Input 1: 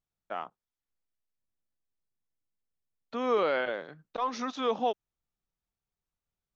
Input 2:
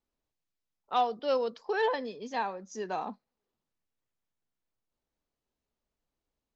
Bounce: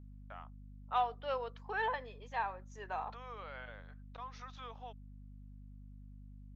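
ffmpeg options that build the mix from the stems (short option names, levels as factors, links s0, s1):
-filter_complex "[0:a]acompressor=threshold=0.00398:ratio=2,volume=0.841[s0];[1:a]equalizer=f=5000:w=2:g=-14,volume=1[s1];[s0][s1]amix=inputs=2:normalize=0,highpass=910,highshelf=f=4100:g=-10,aeval=exprs='val(0)+0.00282*(sin(2*PI*50*n/s)+sin(2*PI*2*50*n/s)/2+sin(2*PI*3*50*n/s)/3+sin(2*PI*4*50*n/s)/4+sin(2*PI*5*50*n/s)/5)':c=same"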